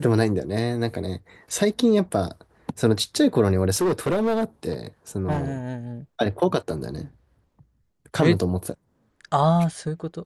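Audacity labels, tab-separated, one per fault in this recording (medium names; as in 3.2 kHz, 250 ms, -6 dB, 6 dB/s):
3.740000	4.440000	clipped -18 dBFS
5.310000	5.740000	clipped -20.5 dBFS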